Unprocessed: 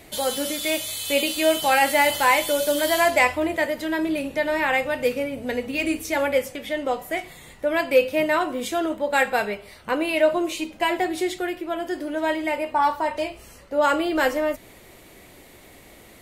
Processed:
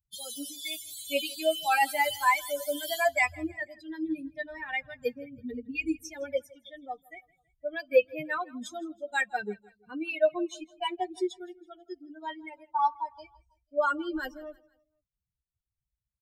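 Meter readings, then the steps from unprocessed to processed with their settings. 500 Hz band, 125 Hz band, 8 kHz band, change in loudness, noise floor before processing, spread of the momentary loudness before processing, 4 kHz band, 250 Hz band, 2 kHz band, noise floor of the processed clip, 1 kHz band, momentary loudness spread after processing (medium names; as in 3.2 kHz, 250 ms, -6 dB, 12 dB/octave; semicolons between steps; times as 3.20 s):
-9.0 dB, under -10 dB, -10.5 dB, -8.0 dB, -49 dBFS, 10 LU, -9.5 dB, -10.5 dB, -8.0 dB, under -85 dBFS, -7.5 dB, 17 LU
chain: expander on every frequency bin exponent 3; feedback delay 163 ms, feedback 44%, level -23.5 dB; trim -1.5 dB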